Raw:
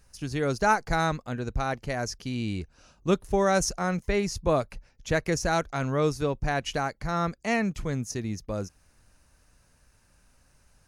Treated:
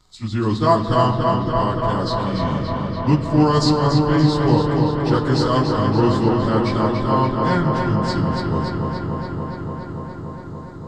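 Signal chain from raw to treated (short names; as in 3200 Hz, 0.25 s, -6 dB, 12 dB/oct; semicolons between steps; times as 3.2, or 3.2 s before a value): pitch shift by moving bins -4.5 st; graphic EQ 125/250/1000/4000/8000 Hz +7/+8/+9/+8/+3 dB; darkening echo 0.287 s, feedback 83%, low-pass 4900 Hz, level -4 dB; on a send at -8.5 dB: reverb RT60 2.8 s, pre-delay 3 ms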